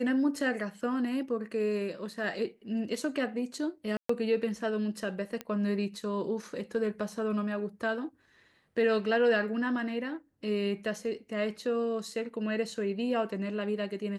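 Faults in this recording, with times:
0:03.97–0:04.09: drop-out 124 ms
0:05.41: click −21 dBFS

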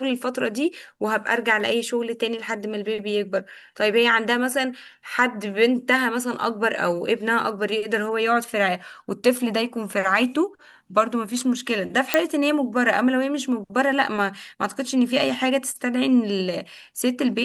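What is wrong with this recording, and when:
0:12.14: click −3 dBFS

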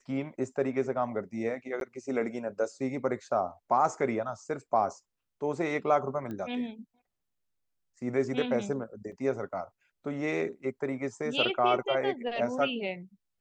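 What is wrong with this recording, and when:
0:01.80–0:01.81: drop-out 12 ms
0:06.31: click −27 dBFS
0:09.12–0:09.13: drop-out 5.6 ms

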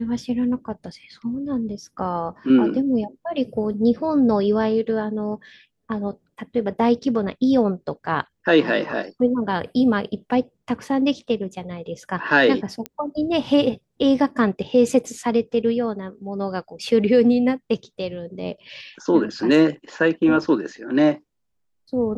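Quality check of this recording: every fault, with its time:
0:12.86: click −13 dBFS

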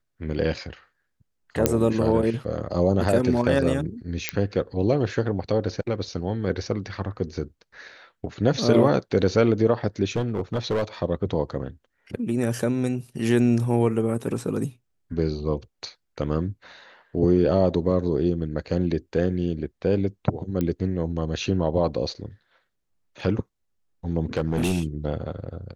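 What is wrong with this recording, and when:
0:01.66: click −2 dBFS
0:04.29: click −6 dBFS
0:10.16–0:10.84: clipping −19.5 dBFS
0:20.61: click −14 dBFS
0:24.37–0:24.84: clipping −18 dBFS

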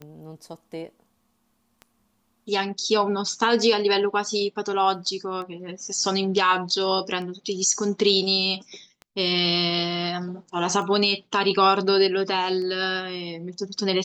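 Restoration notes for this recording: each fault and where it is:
scratch tick 33 1/3 rpm −25 dBFS

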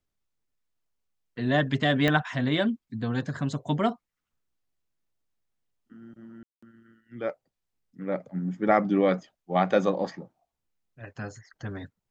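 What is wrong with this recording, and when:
0:02.08: click −11 dBFS
0:06.43–0:06.62: drop-out 195 ms

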